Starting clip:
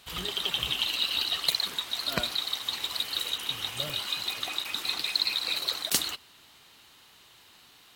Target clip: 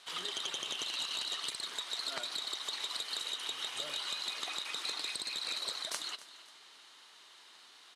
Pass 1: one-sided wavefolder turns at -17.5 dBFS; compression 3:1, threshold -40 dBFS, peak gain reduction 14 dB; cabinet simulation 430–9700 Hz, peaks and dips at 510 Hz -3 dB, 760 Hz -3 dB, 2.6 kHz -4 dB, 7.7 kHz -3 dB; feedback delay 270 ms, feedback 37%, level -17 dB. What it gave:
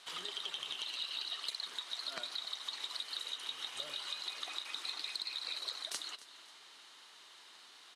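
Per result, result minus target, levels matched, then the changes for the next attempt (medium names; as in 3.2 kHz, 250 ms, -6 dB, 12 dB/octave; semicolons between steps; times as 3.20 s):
one-sided wavefolder: distortion -12 dB; compression: peak gain reduction +4.5 dB
change: one-sided wavefolder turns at -26.5 dBFS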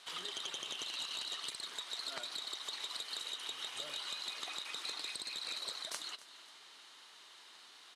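compression: peak gain reduction +4 dB
change: compression 3:1, threshold -34 dBFS, peak gain reduction 9.5 dB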